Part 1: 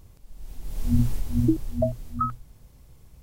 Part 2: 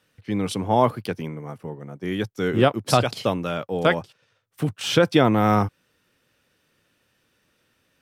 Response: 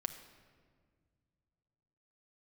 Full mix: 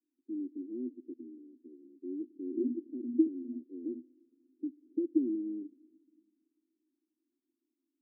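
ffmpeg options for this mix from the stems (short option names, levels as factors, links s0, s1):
-filter_complex "[0:a]adelay=1700,volume=0.668[s0];[1:a]volume=0.355,asplit=2[s1][s2];[s2]volume=0.237[s3];[2:a]atrim=start_sample=2205[s4];[s3][s4]afir=irnorm=-1:irlink=0[s5];[s0][s1][s5]amix=inputs=3:normalize=0,asuperpass=centerf=300:order=8:qfactor=2.7"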